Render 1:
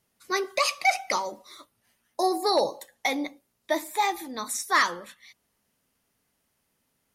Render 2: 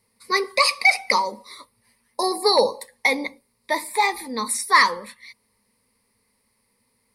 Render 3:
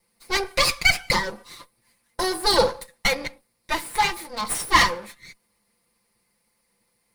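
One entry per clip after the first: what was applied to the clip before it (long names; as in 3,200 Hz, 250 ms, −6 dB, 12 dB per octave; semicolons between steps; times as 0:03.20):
EQ curve with evenly spaced ripples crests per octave 0.92, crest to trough 13 dB; level +3.5 dB
lower of the sound and its delayed copy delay 5.8 ms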